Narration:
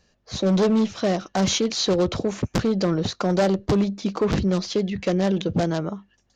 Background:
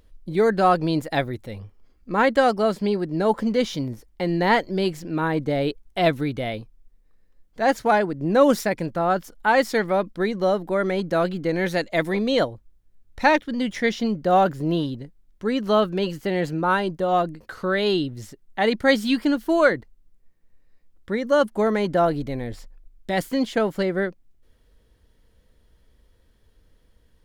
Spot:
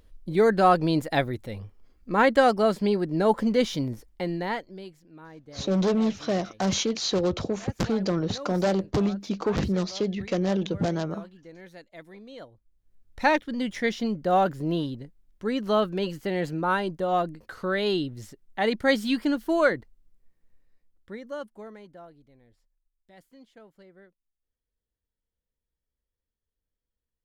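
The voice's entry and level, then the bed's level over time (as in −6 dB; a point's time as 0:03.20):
5.25 s, −4.0 dB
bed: 0:04.08 −1 dB
0:05.02 −23 dB
0:12.40 −23 dB
0:12.92 −4 dB
0:20.53 −4 dB
0:22.15 −29.5 dB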